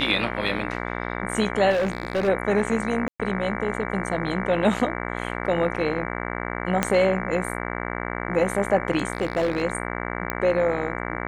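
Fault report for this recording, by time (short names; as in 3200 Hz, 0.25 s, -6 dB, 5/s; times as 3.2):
buzz 60 Hz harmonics 38 -30 dBFS
1.7–2.29 clipped -19.5 dBFS
3.08–3.2 gap 0.116 s
6.83 pop -6 dBFS
9.13–9.62 clipped -18 dBFS
10.3 pop -10 dBFS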